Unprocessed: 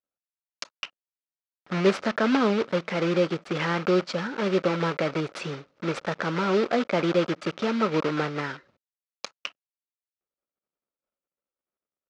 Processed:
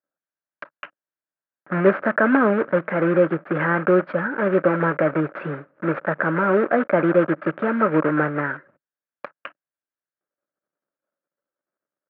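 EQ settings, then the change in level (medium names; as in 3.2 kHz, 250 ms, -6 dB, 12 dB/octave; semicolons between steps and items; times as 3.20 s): cabinet simulation 140–2100 Hz, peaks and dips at 150 Hz +4 dB, 310 Hz +6 dB, 590 Hz +8 dB, 1.6 kHz +9 dB; bass shelf 210 Hz +5.5 dB; peaking EQ 1.2 kHz +4 dB 1.1 oct; 0.0 dB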